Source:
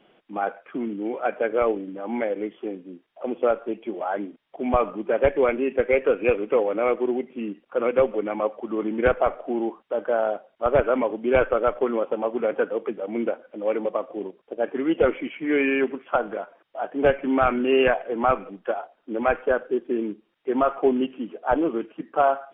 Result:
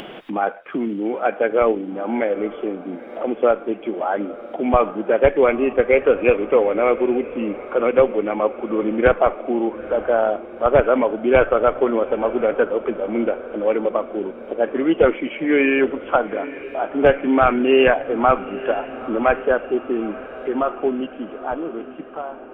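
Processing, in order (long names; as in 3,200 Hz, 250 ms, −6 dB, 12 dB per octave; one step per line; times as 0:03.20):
fade-out on the ending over 3.35 s
upward compression, threshold −26 dBFS
feedback delay with all-pass diffusion 900 ms, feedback 57%, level −16 dB
level +5 dB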